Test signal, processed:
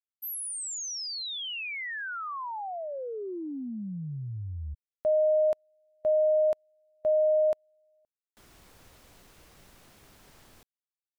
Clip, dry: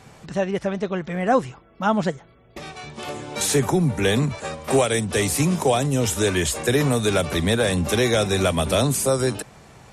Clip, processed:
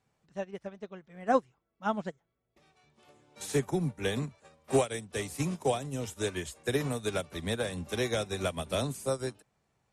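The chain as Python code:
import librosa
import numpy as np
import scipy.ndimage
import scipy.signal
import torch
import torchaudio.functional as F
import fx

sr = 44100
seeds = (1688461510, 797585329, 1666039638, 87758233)

y = fx.upward_expand(x, sr, threshold_db=-30.0, expansion=2.5)
y = y * librosa.db_to_amplitude(-5.5)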